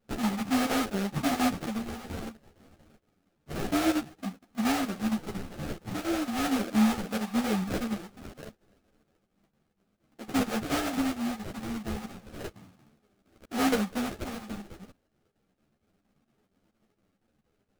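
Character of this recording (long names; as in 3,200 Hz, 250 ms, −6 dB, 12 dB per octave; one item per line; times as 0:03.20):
phaser sweep stages 2, 0.32 Hz, lowest notch 350–2,000 Hz
aliases and images of a low sample rate 1,000 Hz, jitter 20%
chopped level 4.3 Hz, depth 60%, duty 80%
a shimmering, thickened sound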